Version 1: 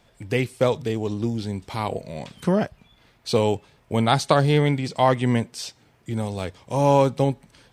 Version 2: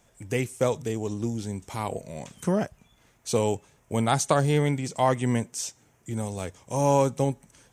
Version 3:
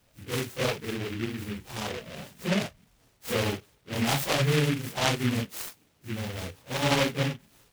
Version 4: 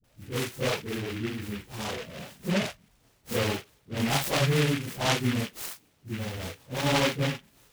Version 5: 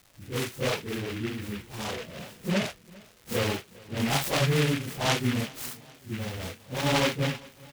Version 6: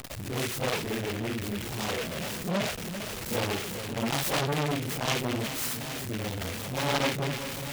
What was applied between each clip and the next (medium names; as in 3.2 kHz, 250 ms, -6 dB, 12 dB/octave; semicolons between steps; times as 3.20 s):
resonant high shelf 5.4 kHz +6 dB, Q 3; trim -4 dB
phase randomisation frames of 100 ms; delay time shaken by noise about 2.1 kHz, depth 0.19 ms; trim -3 dB
phase dispersion highs, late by 41 ms, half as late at 460 Hz
crackle 290 per s -43 dBFS; feedback delay 400 ms, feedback 59%, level -23.5 dB
jump at every zero crossing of -29.5 dBFS; transformer saturation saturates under 1.2 kHz